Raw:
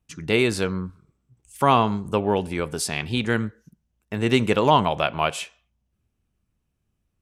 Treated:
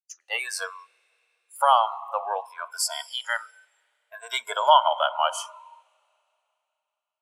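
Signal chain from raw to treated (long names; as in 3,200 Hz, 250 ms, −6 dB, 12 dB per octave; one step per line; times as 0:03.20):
rippled gain that drifts along the octave scale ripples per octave 1.7, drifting −0.58 Hz, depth 7 dB
Butterworth high-pass 620 Hz 36 dB per octave
downward expander −50 dBFS
convolution reverb RT60 3.3 s, pre-delay 93 ms, DRR 14 dB
noise reduction from a noise print of the clip's start 21 dB
0:03.16–0:05.38: notch filter 5,100 Hz, Q 6.7
level +1 dB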